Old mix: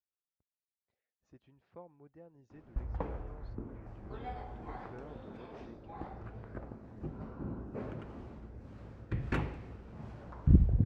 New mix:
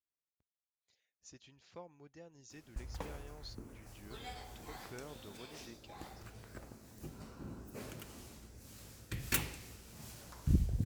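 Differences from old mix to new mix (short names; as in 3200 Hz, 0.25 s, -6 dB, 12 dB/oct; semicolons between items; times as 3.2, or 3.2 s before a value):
background -7.0 dB; master: remove LPF 1200 Hz 12 dB/oct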